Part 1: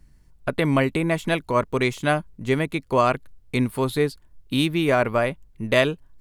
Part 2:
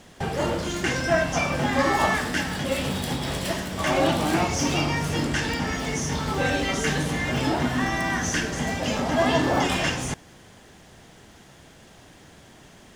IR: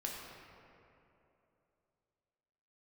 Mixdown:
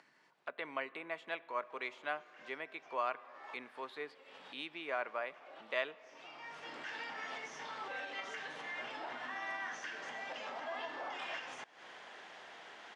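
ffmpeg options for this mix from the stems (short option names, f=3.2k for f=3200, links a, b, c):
-filter_complex "[0:a]highpass=f=140:w=0.5412,highpass=f=140:w=1.3066,volume=-14.5dB,asplit=3[a][b][c];[b]volume=-16dB[d];[1:a]acompressor=threshold=-35dB:ratio=2,alimiter=level_in=4dB:limit=-24dB:level=0:latency=1:release=255,volume=-4dB,adelay=1500,volume=-0.5dB[e];[c]apad=whole_len=637580[f];[e][f]sidechaincompress=threshold=-58dB:ratio=4:attack=16:release=443[g];[2:a]atrim=start_sample=2205[h];[d][h]afir=irnorm=-1:irlink=0[i];[a][g][i]amix=inputs=3:normalize=0,acompressor=mode=upward:threshold=-40dB:ratio=2.5,highpass=740,lowpass=3k"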